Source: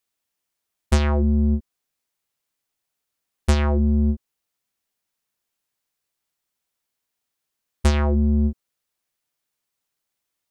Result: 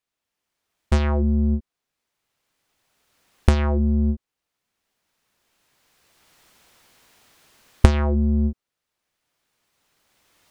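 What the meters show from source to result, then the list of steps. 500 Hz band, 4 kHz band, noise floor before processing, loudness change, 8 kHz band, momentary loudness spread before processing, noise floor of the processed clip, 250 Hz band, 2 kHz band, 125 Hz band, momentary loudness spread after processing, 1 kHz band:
0.0 dB, -2.0 dB, -81 dBFS, 0.0 dB, -4.5 dB, 6 LU, -85 dBFS, -0.5 dB, -0.5 dB, +0.5 dB, 7 LU, 0.0 dB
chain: recorder AGC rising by 13 dB/s; low-pass 3.7 kHz 6 dB/octave; trim -1 dB

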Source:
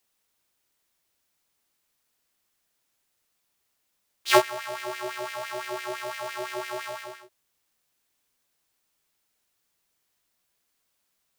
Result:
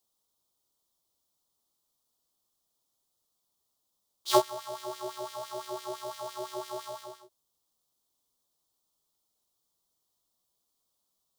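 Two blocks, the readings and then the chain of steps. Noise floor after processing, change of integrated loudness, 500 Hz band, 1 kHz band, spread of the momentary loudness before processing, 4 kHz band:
-80 dBFS, -5.0 dB, -3.5 dB, -4.0 dB, 17 LU, -5.5 dB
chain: high-order bell 2 kHz -15 dB 1.1 oct; trim -3.5 dB

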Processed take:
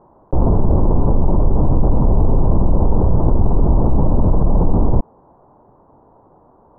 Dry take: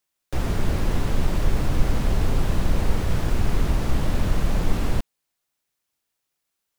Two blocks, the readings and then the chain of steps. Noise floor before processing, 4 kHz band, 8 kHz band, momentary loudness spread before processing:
-80 dBFS, under -40 dB, under -40 dB, 3 LU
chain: elliptic low-pass 980 Hz, stop band 60 dB; level flattener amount 70%; trim +3.5 dB

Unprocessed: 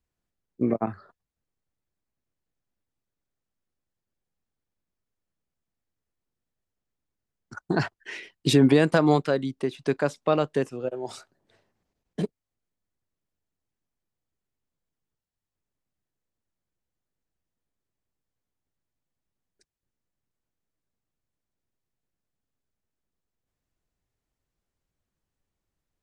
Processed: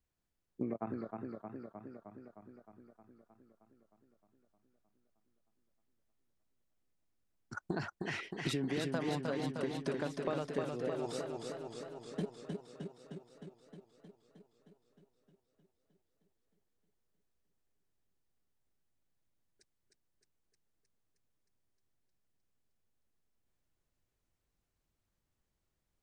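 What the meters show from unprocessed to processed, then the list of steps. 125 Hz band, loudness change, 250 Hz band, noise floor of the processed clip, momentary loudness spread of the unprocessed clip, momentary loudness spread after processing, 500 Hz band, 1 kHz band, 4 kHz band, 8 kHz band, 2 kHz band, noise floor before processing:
-13.0 dB, -15.0 dB, -13.5 dB, -84 dBFS, 16 LU, 19 LU, -12.5 dB, -12.5 dB, -11.0 dB, -10.0 dB, -10.5 dB, under -85 dBFS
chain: compression 5:1, threshold -32 dBFS, peak gain reduction 16.5 dB; modulated delay 310 ms, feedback 70%, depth 57 cents, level -4 dB; trim -3 dB

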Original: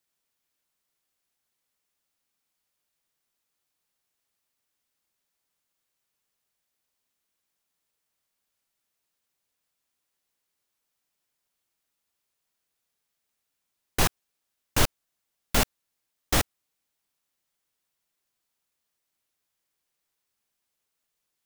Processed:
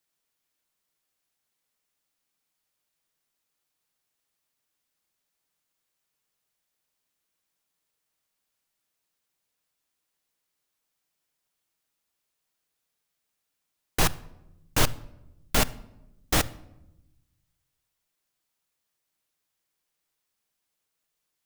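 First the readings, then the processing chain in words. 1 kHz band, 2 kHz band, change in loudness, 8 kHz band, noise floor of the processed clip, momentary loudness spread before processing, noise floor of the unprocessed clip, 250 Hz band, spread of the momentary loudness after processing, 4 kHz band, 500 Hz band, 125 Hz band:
0.0 dB, 0.0 dB, 0.0 dB, 0.0 dB, -81 dBFS, 5 LU, -82 dBFS, +0.5 dB, 8 LU, 0.0 dB, 0.0 dB, +0.5 dB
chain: simulated room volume 3200 m³, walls furnished, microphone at 0.55 m

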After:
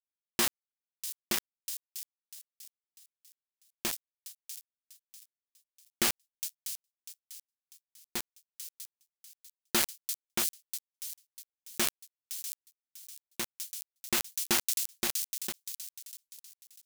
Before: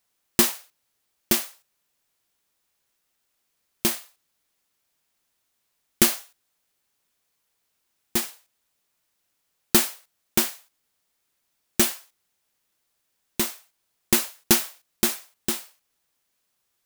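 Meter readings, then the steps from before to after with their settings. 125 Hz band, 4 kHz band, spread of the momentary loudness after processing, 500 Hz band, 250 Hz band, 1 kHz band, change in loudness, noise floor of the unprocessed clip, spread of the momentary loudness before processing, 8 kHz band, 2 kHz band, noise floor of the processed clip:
-13.5 dB, -6.0 dB, 21 LU, -11.0 dB, -13.0 dB, -6.5 dB, -10.0 dB, -75 dBFS, 14 LU, -6.5 dB, -6.0 dB, under -85 dBFS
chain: overdrive pedal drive 9 dB, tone 5.3 kHz, clips at -1 dBFS; small samples zeroed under -18 dBFS; feedback echo behind a high-pass 645 ms, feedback 34%, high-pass 5.2 kHz, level -7.5 dB; decay stretcher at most 22 dB/s; trim -10 dB

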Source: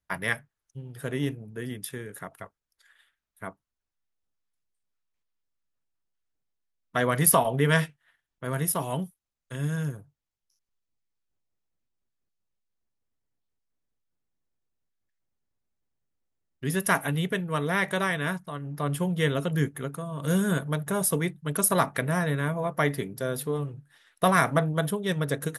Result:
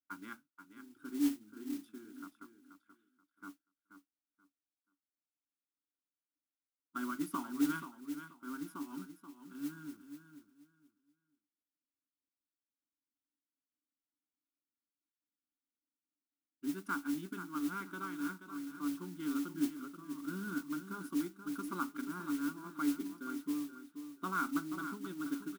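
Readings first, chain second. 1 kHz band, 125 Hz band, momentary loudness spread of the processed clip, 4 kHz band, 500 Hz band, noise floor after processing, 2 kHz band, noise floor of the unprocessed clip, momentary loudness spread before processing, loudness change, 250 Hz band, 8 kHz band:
-14.0 dB, -25.5 dB, 17 LU, -17.0 dB, -22.5 dB, under -85 dBFS, -15.5 dB, under -85 dBFS, 15 LU, -12.5 dB, -6.0 dB, -21.0 dB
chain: two resonant band-passes 650 Hz, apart 2.3 oct; static phaser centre 480 Hz, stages 6; feedback delay 481 ms, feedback 23%, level -10 dB; modulation noise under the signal 16 dB; trim +1.5 dB

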